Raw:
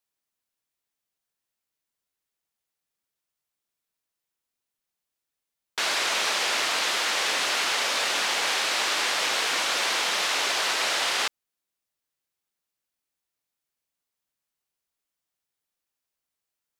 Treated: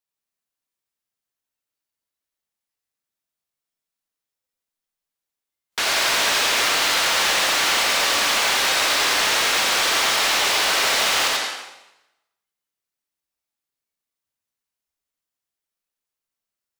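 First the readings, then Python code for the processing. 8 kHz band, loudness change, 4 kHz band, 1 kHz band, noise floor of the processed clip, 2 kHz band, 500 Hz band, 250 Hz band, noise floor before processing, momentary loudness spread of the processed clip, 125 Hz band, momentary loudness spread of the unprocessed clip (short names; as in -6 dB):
+6.5 dB, +6.0 dB, +6.0 dB, +6.0 dB, under -85 dBFS, +6.0 dB, +6.0 dB, +7.0 dB, under -85 dBFS, 3 LU, n/a, 1 LU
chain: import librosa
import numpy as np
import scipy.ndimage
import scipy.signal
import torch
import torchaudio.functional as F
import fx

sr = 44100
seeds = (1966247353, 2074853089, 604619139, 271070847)

p1 = x + 10.0 ** (-4.0 / 20.0) * np.pad(x, (int(87 * sr / 1000.0), 0))[:len(x)]
p2 = fx.noise_reduce_blind(p1, sr, reduce_db=10)
p3 = fx.rev_plate(p2, sr, seeds[0], rt60_s=0.94, hf_ratio=0.9, predelay_ms=85, drr_db=3.5)
p4 = (np.mod(10.0 ** (20.5 / 20.0) * p3 + 1.0, 2.0) - 1.0) / 10.0 ** (20.5 / 20.0)
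p5 = p3 + (p4 * 10.0 ** (-8.5 / 20.0))
y = p5 * 10.0 ** (2.5 / 20.0)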